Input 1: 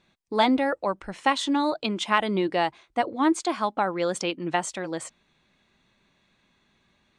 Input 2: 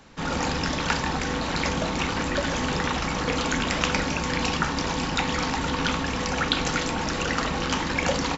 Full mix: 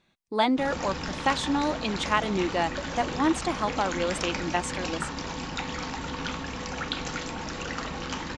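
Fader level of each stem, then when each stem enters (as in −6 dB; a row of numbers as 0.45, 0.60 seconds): −2.5, −7.5 decibels; 0.00, 0.40 seconds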